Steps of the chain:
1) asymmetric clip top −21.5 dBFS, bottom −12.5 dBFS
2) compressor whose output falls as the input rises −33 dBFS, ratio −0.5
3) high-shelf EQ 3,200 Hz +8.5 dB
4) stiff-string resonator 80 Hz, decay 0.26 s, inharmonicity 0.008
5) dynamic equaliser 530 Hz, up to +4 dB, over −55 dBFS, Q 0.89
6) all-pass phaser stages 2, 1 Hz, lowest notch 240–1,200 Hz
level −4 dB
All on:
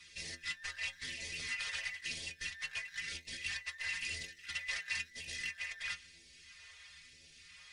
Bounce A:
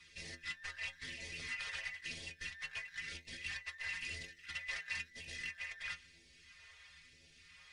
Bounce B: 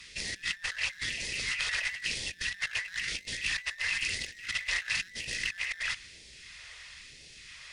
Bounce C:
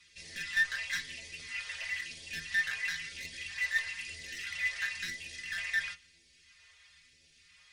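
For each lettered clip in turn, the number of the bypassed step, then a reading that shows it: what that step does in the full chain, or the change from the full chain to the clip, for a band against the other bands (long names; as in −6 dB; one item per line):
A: 3, 8 kHz band −6.5 dB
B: 4, change in crest factor +2.0 dB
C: 2, change in momentary loudness spread −7 LU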